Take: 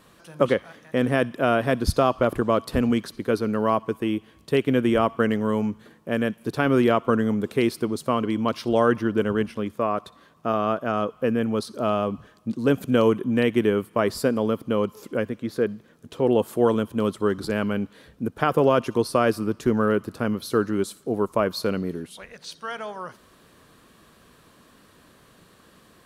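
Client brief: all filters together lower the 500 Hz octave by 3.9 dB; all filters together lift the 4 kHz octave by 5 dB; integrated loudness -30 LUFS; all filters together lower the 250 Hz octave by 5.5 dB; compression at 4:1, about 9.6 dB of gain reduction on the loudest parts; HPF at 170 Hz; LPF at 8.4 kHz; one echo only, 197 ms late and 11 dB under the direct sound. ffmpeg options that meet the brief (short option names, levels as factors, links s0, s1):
-af "highpass=170,lowpass=8400,equalizer=f=250:t=o:g=-4.5,equalizer=f=500:t=o:g=-3.5,equalizer=f=4000:t=o:g=7,acompressor=threshold=0.0355:ratio=4,aecho=1:1:197:0.282,volume=1.5"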